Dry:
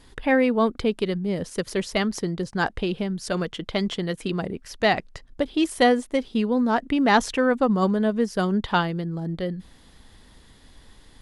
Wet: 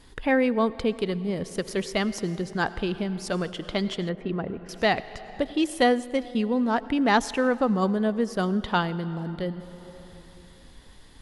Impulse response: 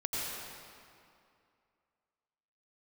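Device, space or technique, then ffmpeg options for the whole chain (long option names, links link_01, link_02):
compressed reverb return: -filter_complex "[0:a]asplit=2[link_01][link_02];[1:a]atrim=start_sample=2205[link_03];[link_02][link_03]afir=irnorm=-1:irlink=0,acompressor=threshold=-27dB:ratio=5,volume=-9dB[link_04];[link_01][link_04]amix=inputs=2:normalize=0,asettb=1/sr,asplit=3[link_05][link_06][link_07];[link_05]atrim=end=4.094[link_08];[link_06]atrim=start=4.09:end=4.69,asetpts=PTS-STARTPTS,afade=type=in:duration=0.004:curve=qsin,afade=type=out:start_time=0.596:duration=0.004:curve=qsin,lowpass=1800[link_09];[link_07]atrim=start=4.686[link_10];[link_08][link_09]acrossfade=duration=0.004:curve1=hsin:curve2=qsin[link_11];[link_11][link_10]acrossfade=duration=0.004:curve1=qsin:curve2=hsin,volume=-3dB"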